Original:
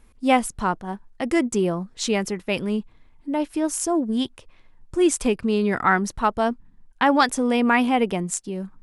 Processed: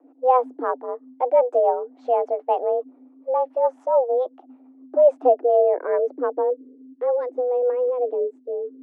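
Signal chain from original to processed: rotary speaker horn 7 Hz; frequency shift +250 Hz; low-pass sweep 820 Hz -> 390 Hz, 4.78–7.41

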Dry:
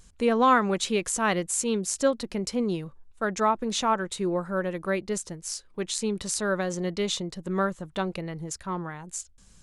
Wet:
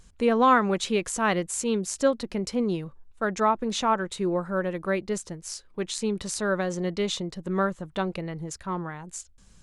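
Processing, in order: high shelf 5300 Hz -6 dB; gain +1 dB

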